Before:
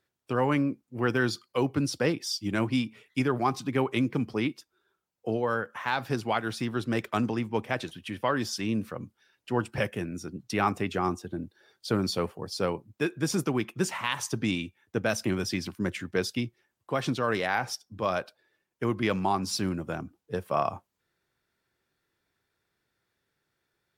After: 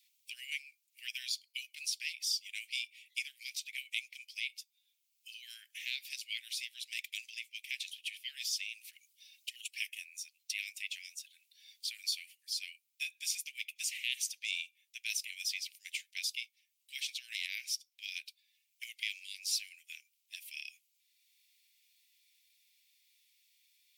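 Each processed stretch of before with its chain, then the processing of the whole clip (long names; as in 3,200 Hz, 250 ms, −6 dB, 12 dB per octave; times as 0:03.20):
0:08.93–0:09.68: linear-phase brick-wall high-pass 550 Hz + high-shelf EQ 2,300 Hz +8.5 dB + flanger swept by the level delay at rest 4.2 ms, full sweep at −30.5 dBFS
whole clip: Butterworth high-pass 2,200 Hz 72 dB per octave; high-shelf EQ 12,000 Hz +6 dB; multiband upward and downward compressor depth 40%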